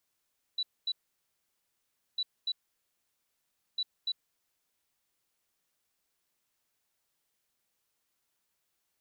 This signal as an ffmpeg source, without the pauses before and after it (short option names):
-f lavfi -i "aevalsrc='0.0376*sin(2*PI*3950*t)*clip(min(mod(mod(t,1.6),0.29),0.05-mod(mod(t,1.6),0.29))/0.005,0,1)*lt(mod(t,1.6),0.58)':d=4.8:s=44100"